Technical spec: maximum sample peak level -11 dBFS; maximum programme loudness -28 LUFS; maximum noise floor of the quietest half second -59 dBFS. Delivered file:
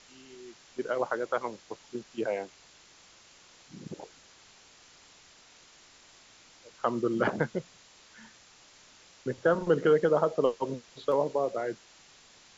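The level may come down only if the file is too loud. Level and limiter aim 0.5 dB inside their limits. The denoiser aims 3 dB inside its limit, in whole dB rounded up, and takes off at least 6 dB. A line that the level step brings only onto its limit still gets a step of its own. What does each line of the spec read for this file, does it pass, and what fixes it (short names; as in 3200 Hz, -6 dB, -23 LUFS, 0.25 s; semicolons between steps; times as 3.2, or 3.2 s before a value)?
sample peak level -12.5 dBFS: OK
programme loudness -30.0 LUFS: OK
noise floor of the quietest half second -57 dBFS: fail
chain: denoiser 6 dB, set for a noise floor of -57 dBFS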